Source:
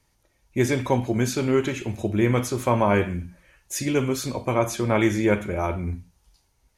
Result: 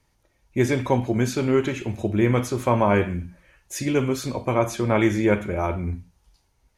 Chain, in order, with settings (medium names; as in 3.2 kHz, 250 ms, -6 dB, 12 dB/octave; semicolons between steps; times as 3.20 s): treble shelf 4.5 kHz -5.5 dB; trim +1 dB